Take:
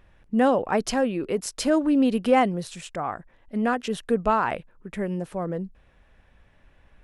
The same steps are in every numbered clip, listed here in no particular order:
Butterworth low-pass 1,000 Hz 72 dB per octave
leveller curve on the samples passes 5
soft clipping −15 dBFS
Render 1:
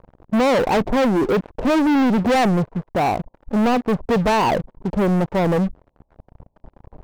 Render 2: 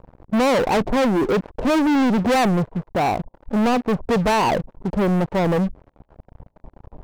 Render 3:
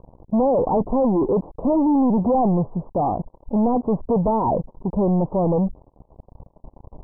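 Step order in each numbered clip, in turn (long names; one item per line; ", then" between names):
soft clipping, then Butterworth low-pass, then leveller curve on the samples
Butterworth low-pass, then soft clipping, then leveller curve on the samples
soft clipping, then leveller curve on the samples, then Butterworth low-pass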